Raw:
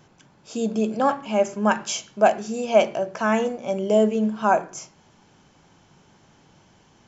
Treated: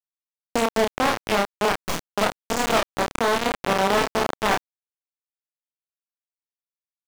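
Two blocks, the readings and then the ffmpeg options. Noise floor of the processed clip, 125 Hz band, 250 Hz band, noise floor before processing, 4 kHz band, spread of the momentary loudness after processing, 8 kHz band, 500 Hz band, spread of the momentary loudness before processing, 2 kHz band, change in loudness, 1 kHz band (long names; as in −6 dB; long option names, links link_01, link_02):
below −85 dBFS, −0.5 dB, −4.5 dB, −57 dBFS, +7.0 dB, 6 LU, can't be measured, −3.0 dB, 9 LU, +4.0 dB, −1.0 dB, +0.5 dB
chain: -filter_complex "[0:a]equalizer=frequency=250:width=6.8:gain=4.5,bandreject=frequency=210:width_type=h:width=4,bandreject=frequency=420:width_type=h:width=4,bandreject=frequency=630:width_type=h:width=4,bandreject=frequency=840:width_type=h:width=4,bandreject=frequency=1050:width_type=h:width=4,bandreject=frequency=1260:width_type=h:width=4,bandreject=frequency=1470:width_type=h:width=4,bandreject=frequency=1680:width_type=h:width=4,bandreject=frequency=1890:width_type=h:width=4,bandreject=frequency=2100:width_type=h:width=4,bandreject=frequency=2310:width_type=h:width=4,bandreject=frequency=2520:width_type=h:width=4,bandreject=frequency=2730:width_type=h:width=4,bandreject=frequency=2940:width_type=h:width=4,bandreject=frequency=3150:width_type=h:width=4,bandreject=frequency=3360:width_type=h:width=4,bandreject=frequency=3570:width_type=h:width=4,bandreject=frequency=3780:width_type=h:width=4,bandreject=frequency=3990:width_type=h:width=4,bandreject=frequency=4200:width_type=h:width=4,bandreject=frequency=4410:width_type=h:width=4,bandreject=frequency=4620:width_type=h:width=4,bandreject=frequency=4830:width_type=h:width=4,bandreject=frequency=5040:width_type=h:width=4,bandreject=frequency=5250:width_type=h:width=4,bandreject=frequency=5460:width_type=h:width=4,bandreject=frequency=5670:width_type=h:width=4,bandreject=frequency=5880:width_type=h:width=4,bandreject=frequency=6090:width_type=h:width=4,bandreject=frequency=6300:width_type=h:width=4,bandreject=frequency=6510:width_type=h:width=4,bandreject=frequency=6720:width_type=h:width=4,acompressor=threshold=-31dB:ratio=10,aeval=exprs='0.0841*(cos(1*acos(clip(val(0)/0.0841,-1,1)))-cos(1*PI/2))+0.00376*(cos(2*acos(clip(val(0)/0.0841,-1,1)))-cos(2*PI/2))+0.0119*(cos(6*acos(clip(val(0)/0.0841,-1,1)))-cos(6*PI/2))+0.00596*(cos(7*acos(clip(val(0)/0.0841,-1,1)))-cos(7*PI/2))':channel_layout=same,asplit=2[link_01][link_02];[link_02]aecho=0:1:54|61|73|161|260|486:0.376|0.119|0.178|0.299|0.141|0.473[link_03];[link_01][link_03]amix=inputs=2:normalize=0,acrusher=bits=3:mix=0:aa=0.000001,asplit=2[link_04][link_05];[link_05]adelay=30,volume=-12dB[link_06];[link_04][link_06]amix=inputs=2:normalize=0,asplit=2[link_07][link_08];[link_08]highpass=frequency=720:poles=1,volume=32dB,asoftclip=type=tanh:threshold=-14.5dB[link_09];[link_07][link_09]amix=inputs=2:normalize=0,lowpass=frequency=3700:poles=1,volume=-6dB,volume=3.5dB"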